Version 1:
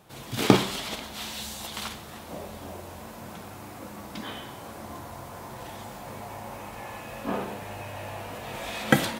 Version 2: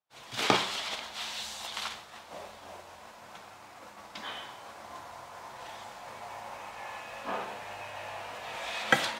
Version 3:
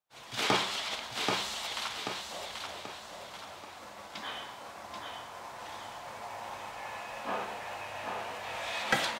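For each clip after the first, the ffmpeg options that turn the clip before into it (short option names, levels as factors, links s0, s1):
-filter_complex "[0:a]acrossover=split=580 7700:gain=0.178 1 0.2[s0][s1][s2];[s0][s1][s2]amix=inputs=3:normalize=0,agate=range=0.0224:threshold=0.00794:ratio=3:detection=peak"
-filter_complex "[0:a]asplit=2[s0][s1];[s1]aecho=0:1:784|1568|2352|3136|3920:0.562|0.225|0.09|0.036|0.0144[s2];[s0][s2]amix=inputs=2:normalize=0,asoftclip=type=tanh:threshold=0.133"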